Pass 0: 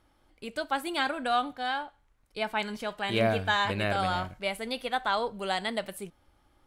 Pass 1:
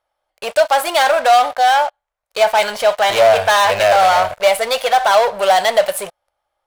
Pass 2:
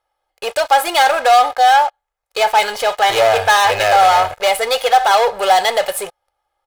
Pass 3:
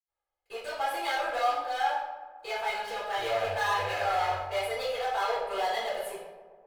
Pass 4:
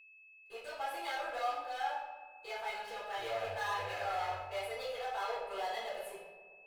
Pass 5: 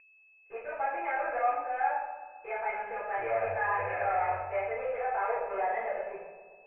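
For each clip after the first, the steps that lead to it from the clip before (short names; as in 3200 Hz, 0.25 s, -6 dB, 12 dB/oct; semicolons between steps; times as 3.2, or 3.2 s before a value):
sample leveller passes 5; resonant low shelf 410 Hz -13.5 dB, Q 3; gain +2 dB
comb 2.4 ms, depth 49%
darkening echo 0.129 s, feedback 72%, low-pass 1800 Hz, level -14 dB; reverb RT60 0.75 s, pre-delay 77 ms
whine 2600 Hz -48 dBFS; gain -8.5 dB
rippled Chebyshev low-pass 2500 Hz, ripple 3 dB; gain +8 dB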